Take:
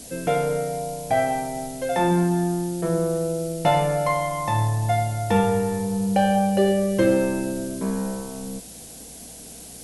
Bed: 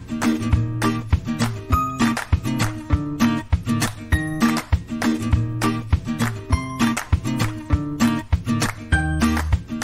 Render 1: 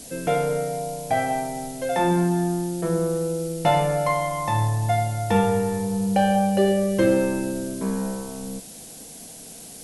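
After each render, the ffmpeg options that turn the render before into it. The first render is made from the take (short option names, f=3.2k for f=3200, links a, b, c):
-af "bandreject=f=60:t=h:w=4,bandreject=f=120:t=h:w=4,bandreject=f=180:t=h:w=4,bandreject=f=240:t=h:w=4,bandreject=f=300:t=h:w=4,bandreject=f=360:t=h:w=4,bandreject=f=420:t=h:w=4,bandreject=f=480:t=h:w=4,bandreject=f=540:t=h:w=4,bandreject=f=600:t=h:w=4,bandreject=f=660:t=h:w=4"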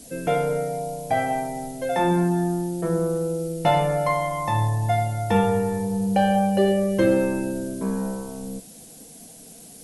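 -af "afftdn=nr=6:nf=-41"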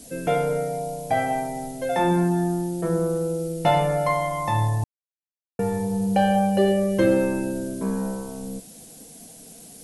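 -filter_complex "[0:a]asplit=3[a][b][c];[a]atrim=end=4.84,asetpts=PTS-STARTPTS,afade=t=out:st=4.836:d=0.004:c=hsin[d];[b]atrim=start=4.84:end=5.59,asetpts=PTS-STARTPTS,volume=0[e];[c]atrim=start=5.59,asetpts=PTS-STARTPTS,afade=t=in:d=0.004:c=hsin[f];[d][e][f]concat=n=3:v=0:a=1"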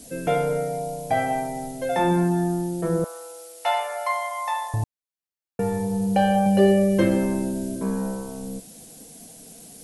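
-filter_complex "[0:a]asettb=1/sr,asplit=3[a][b][c];[a]atrim=end=3.044[d];[b]atrim=start=3.04:end=4.74,asetpts=PTS-STARTPTS,afade=t=in:d=0.004:c=qsin,afade=t=out:st=1.696:d=0.004:c=qsin,highpass=f=740:w=0.5412,highpass=f=740:w=1.3066[e];[c]atrim=start=4.736[f];[d][e]acrossfade=d=0.004:c1=hsin:c2=qsin[g];[g][f]acrossfade=d=0.004:c1=qsin:c2=hsin,asettb=1/sr,asplit=3[h][i][j];[h]atrim=end=6.444[k];[i]atrim=start=6.44:end=7.76,asetpts=PTS-STARTPTS,afade=t=in:d=0.004:c=qsin,afade=t=out:st=1.316:d=0.004:c=qsin,asplit=2[l][m];[m]adelay=20,volume=-4.5dB[n];[l][n]amix=inputs=2:normalize=0,atrim=end_sample=58212[o];[j]atrim=start=7.756[p];[k][o]acrossfade=d=0.004:c1=hsin:c2=qsin[q];[q][p]acrossfade=d=0.004:c1=qsin:c2=hsin"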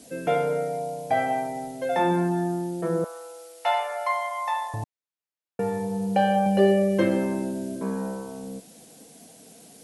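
-af "highpass=f=240:p=1,highshelf=f=5.9k:g=-9"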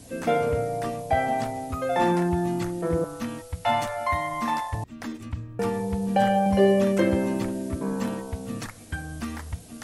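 -filter_complex "[1:a]volume=-14.5dB[a];[0:a][a]amix=inputs=2:normalize=0"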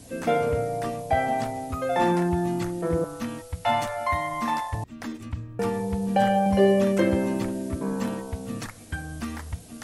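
-af anull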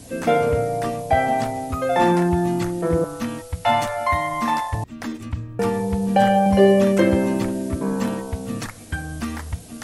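-af "volume=5dB"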